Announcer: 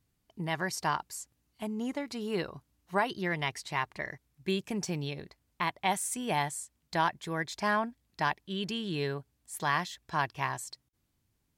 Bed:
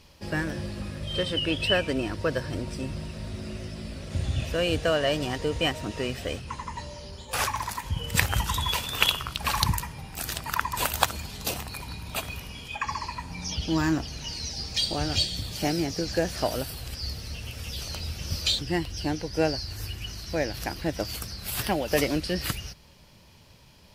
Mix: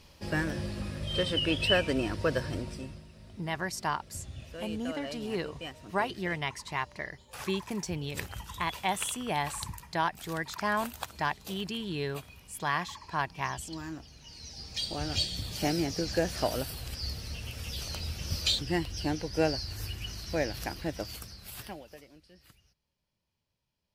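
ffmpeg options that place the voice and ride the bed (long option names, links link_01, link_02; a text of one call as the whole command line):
ffmpeg -i stem1.wav -i stem2.wav -filter_complex "[0:a]adelay=3000,volume=-1dB[link_01];[1:a]volume=11.5dB,afade=type=out:start_time=2.44:duration=0.59:silence=0.199526,afade=type=in:start_time=14.25:duration=1.33:silence=0.223872,afade=type=out:start_time=20.41:duration=1.58:silence=0.0446684[link_02];[link_01][link_02]amix=inputs=2:normalize=0" out.wav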